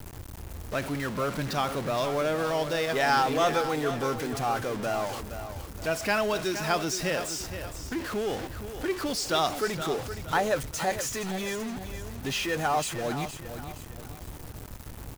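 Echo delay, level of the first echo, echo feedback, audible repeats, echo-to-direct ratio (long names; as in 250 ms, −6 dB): 468 ms, −10.5 dB, 38%, 3, −10.0 dB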